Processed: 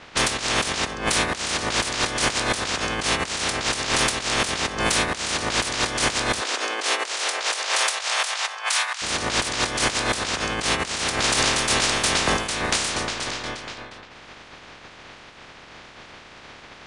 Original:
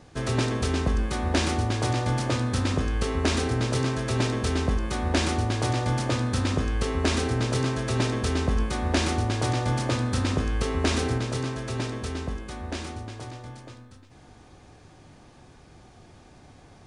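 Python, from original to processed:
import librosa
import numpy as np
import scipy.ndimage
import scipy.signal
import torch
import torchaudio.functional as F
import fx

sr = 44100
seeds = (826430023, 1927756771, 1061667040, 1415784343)

y = fx.spec_clip(x, sr, under_db=30)
y = fx.over_compress(y, sr, threshold_db=-29.0, ratio=-0.5)
y = fx.highpass(y, sr, hz=fx.line((6.4, 300.0), (9.01, 880.0)), slope=24, at=(6.4, 9.01), fade=0.02)
y = fx.env_lowpass(y, sr, base_hz=2400.0, full_db=-25.0)
y = y * 10.0 ** (6.0 / 20.0)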